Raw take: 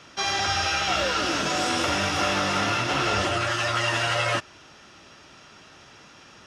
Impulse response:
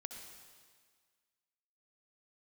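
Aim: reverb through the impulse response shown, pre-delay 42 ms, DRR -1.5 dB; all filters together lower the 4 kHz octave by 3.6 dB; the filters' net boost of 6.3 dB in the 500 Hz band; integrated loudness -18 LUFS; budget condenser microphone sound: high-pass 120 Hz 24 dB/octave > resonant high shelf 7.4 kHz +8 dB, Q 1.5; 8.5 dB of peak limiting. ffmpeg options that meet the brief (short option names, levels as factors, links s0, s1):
-filter_complex "[0:a]equalizer=f=500:t=o:g=8,equalizer=f=4000:t=o:g=-3.5,alimiter=limit=0.112:level=0:latency=1,asplit=2[s0][s1];[1:a]atrim=start_sample=2205,adelay=42[s2];[s1][s2]afir=irnorm=-1:irlink=0,volume=1.68[s3];[s0][s3]amix=inputs=2:normalize=0,highpass=f=120:w=0.5412,highpass=f=120:w=1.3066,highshelf=f=7400:t=q:w=1.5:g=8,volume=2"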